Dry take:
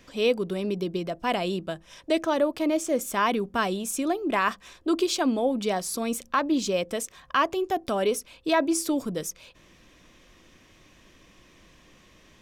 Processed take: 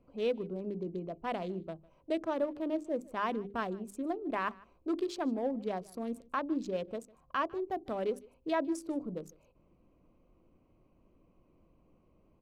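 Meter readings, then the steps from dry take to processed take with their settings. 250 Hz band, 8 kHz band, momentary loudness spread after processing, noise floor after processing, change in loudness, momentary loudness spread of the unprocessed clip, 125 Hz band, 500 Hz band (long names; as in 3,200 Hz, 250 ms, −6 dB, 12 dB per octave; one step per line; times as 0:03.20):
−8.5 dB, −23.0 dB, 7 LU, −68 dBFS, −9.5 dB, 7 LU, −8.5 dB, −8.5 dB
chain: adaptive Wiener filter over 25 samples
high-shelf EQ 2,700 Hz −10 dB
mains-hum notches 50/100/150/200/250/300/350/400 Hz
on a send: single-tap delay 152 ms −23.5 dB
on the sum: level −7.5 dB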